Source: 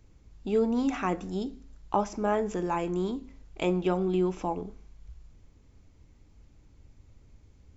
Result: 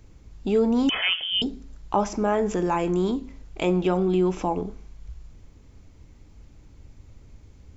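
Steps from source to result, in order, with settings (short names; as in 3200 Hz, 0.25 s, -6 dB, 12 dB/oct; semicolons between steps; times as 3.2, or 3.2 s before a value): in parallel at +2.5 dB: limiter -24.5 dBFS, peak gain reduction 10.5 dB; 0.89–1.42 on the sum: inverted band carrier 3300 Hz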